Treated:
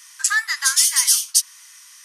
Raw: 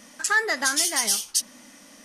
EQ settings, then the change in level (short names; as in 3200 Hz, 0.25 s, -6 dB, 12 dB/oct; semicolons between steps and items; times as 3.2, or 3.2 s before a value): Chebyshev high-pass 990 Hz, order 5; high shelf 2700 Hz +10.5 dB; -1.5 dB